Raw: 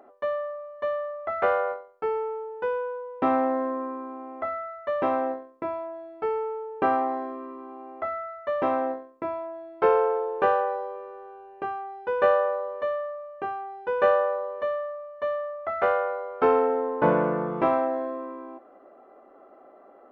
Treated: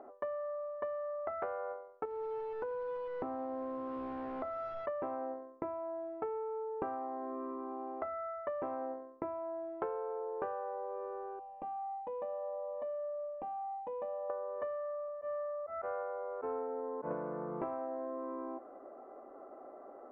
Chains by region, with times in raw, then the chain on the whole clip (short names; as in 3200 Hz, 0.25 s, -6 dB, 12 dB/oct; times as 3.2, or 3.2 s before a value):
2.05–4.86 delta modulation 32 kbps, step -32.5 dBFS + high shelf 2200 Hz -9 dB + compressor 4:1, threshold -32 dBFS
11.39–14.3 compressor 4:1, threshold -35 dBFS + fixed phaser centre 390 Hz, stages 6
15.08–17.11 LPF 2800 Hz + auto swell 0.202 s
whole clip: LPF 1300 Hz 12 dB/oct; bell 190 Hz -5 dB 0.38 oct; compressor 10:1, threshold -37 dBFS; gain +1 dB